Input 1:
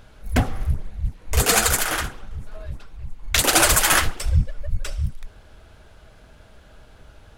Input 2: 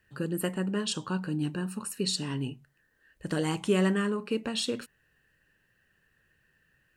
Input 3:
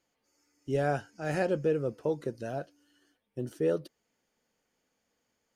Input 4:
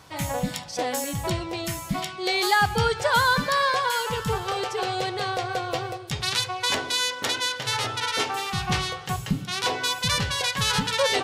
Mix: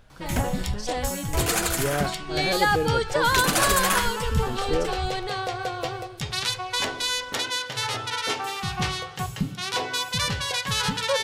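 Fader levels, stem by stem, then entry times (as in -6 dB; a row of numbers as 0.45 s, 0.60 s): -7.0 dB, -8.0 dB, +1.5 dB, -1.5 dB; 0.00 s, 0.00 s, 1.10 s, 0.10 s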